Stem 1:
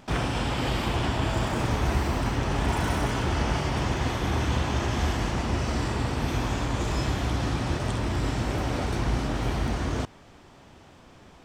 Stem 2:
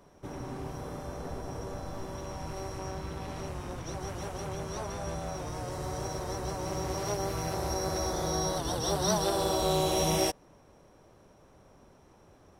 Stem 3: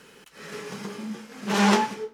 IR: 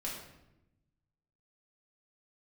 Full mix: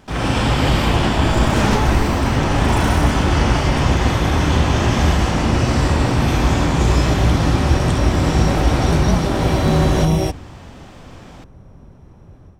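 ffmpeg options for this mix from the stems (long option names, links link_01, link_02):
-filter_complex "[0:a]volume=-1.5dB,asplit=2[link_01][link_02];[link_02]volume=-6dB[link_03];[1:a]bass=frequency=250:gain=15,treble=frequency=4000:gain=-7,volume=-3.5dB[link_04];[2:a]volume=-10dB[link_05];[3:a]atrim=start_sample=2205[link_06];[link_03][link_06]afir=irnorm=-1:irlink=0[link_07];[link_01][link_04][link_05][link_07]amix=inputs=4:normalize=0,dynaudnorm=framelen=140:gausssize=3:maxgain=9dB"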